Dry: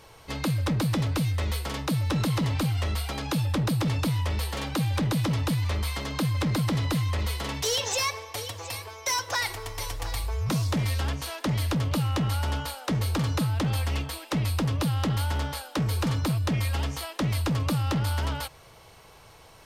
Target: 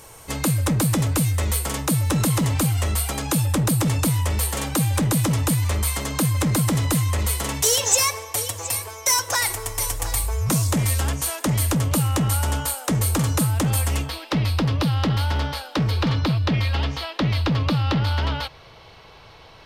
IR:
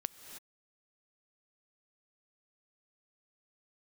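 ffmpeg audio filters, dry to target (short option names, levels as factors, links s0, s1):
-af "asetnsamples=n=441:p=0,asendcmd='14.09 highshelf g -6;15.91 highshelf g -12.5',highshelf=f=5900:t=q:w=1.5:g=9,volume=1.78"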